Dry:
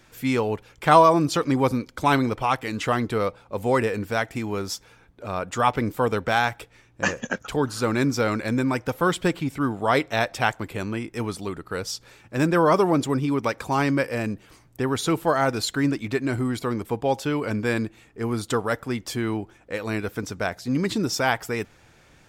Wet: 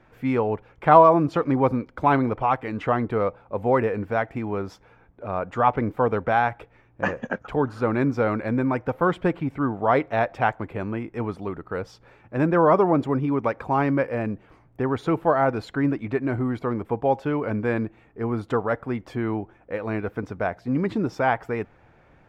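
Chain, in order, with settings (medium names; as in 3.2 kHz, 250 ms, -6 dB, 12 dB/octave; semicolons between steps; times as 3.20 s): FFT filter 350 Hz 0 dB, 740 Hz +3 dB, 2.3 kHz -5 dB, 4 kHz -16 dB, 7.7 kHz -24 dB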